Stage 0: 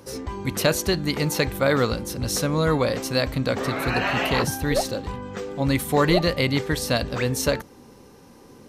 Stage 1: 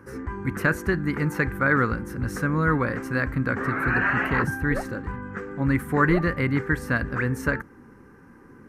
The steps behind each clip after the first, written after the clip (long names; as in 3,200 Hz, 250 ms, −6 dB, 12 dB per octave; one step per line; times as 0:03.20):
drawn EQ curve 340 Hz 0 dB, 640 Hz −11 dB, 1,600 Hz +8 dB, 3,600 Hz −22 dB, 8,500 Hz −14 dB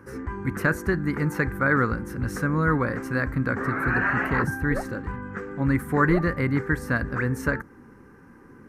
dynamic equaliser 2,900 Hz, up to −6 dB, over −43 dBFS, Q 1.8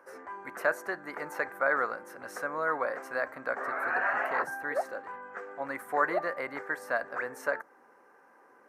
high-pass with resonance 650 Hz, resonance Q 4.2
level −7 dB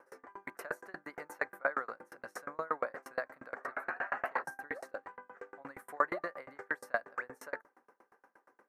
tremolo with a ramp in dB decaying 8.5 Hz, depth 33 dB
level +1.5 dB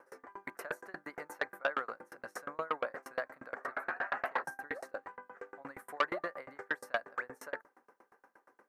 saturating transformer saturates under 1,700 Hz
level +1 dB